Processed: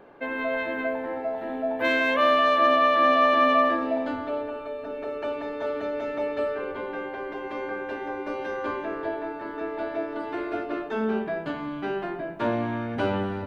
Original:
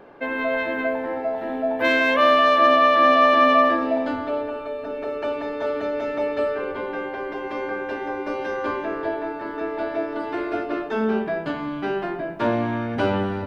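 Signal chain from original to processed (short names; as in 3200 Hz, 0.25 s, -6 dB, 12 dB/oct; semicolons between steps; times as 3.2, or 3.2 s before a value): bell 5200 Hz -5 dB 0.23 oct; gain -4 dB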